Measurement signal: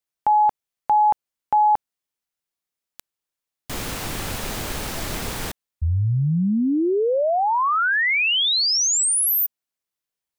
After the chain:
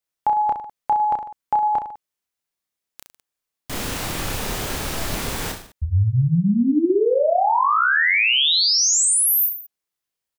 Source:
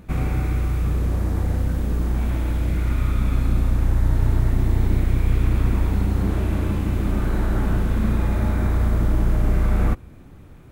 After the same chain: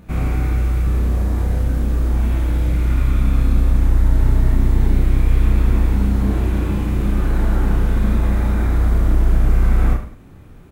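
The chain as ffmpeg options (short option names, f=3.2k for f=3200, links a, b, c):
-af "aecho=1:1:30|64.5|104.2|149.8|202.3:0.631|0.398|0.251|0.158|0.1"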